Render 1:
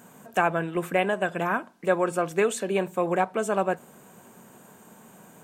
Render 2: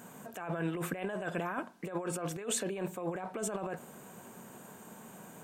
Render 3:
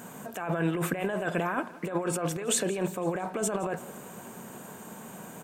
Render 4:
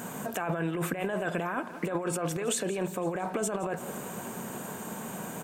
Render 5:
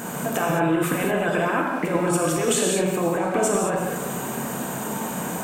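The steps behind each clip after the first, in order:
negative-ratio compressor -31 dBFS, ratio -1; gain -5.5 dB
feedback echo 0.169 s, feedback 57%, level -19 dB; gain +6.5 dB
compressor, threshold -33 dBFS, peak gain reduction 10.5 dB; gain +5.5 dB
non-linear reverb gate 0.24 s flat, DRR -1.5 dB; gain +6 dB

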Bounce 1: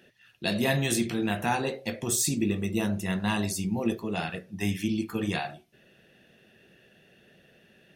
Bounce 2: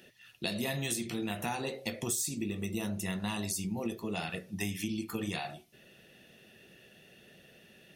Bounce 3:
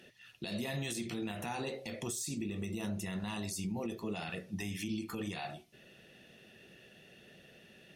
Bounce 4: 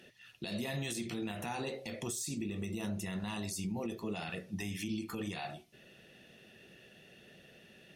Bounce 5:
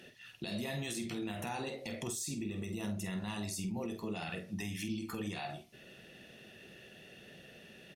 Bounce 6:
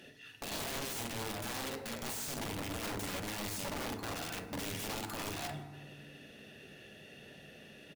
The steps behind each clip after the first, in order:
high shelf 3900 Hz +8 dB; notch 1600 Hz, Q 11; compressor 5:1, threshold -32 dBFS, peak gain reduction 13.5 dB
high shelf 12000 Hz -11.5 dB; limiter -29 dBFS, peak gain reduction 11 dB
nothing audible
compressor 1.5:1, threshold -46 dBFS, peak gain reduction 5 dB; doubler 48 ms -10 dB; gain +3 dB
echo 0.269 s -23.5 dB; wrapped overs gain 35 dB; reverb RT60 1.3 s, pre-delay 4 ms, DRR 5.5 dB

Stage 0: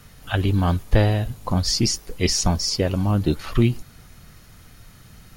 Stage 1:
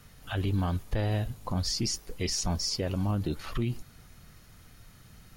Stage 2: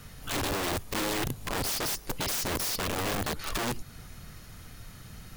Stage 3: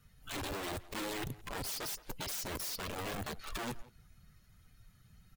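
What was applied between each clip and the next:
limiter -14.5 dBFS, peak gain reduction 8.5 dB; gain -6.5 dB
in parallel at +1.5 dB: compressor 8:1, threshold -38 dBFS, peak gain reduction 13.5 dB; on the sum: wrapped overs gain 25.5 dB
per-bin expansion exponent 1.5; speakerphone echo 0.17 s, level -15 dB; gain -6 dB

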